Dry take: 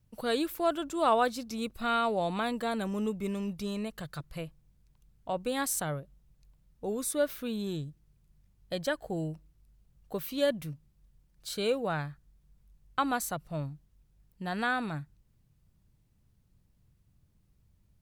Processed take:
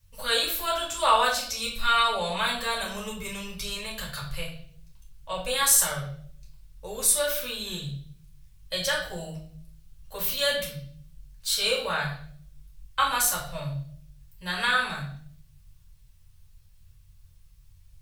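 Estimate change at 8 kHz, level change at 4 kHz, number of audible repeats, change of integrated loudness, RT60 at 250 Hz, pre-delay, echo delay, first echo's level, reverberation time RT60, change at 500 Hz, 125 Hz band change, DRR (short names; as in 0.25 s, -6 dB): +14.0 dB, +13.5 dB, none, +6.5 dB, 0.85 s, 3 ms, none, none, 0.55 s, 0.0 dB, +2.0 dB, -5.0 dB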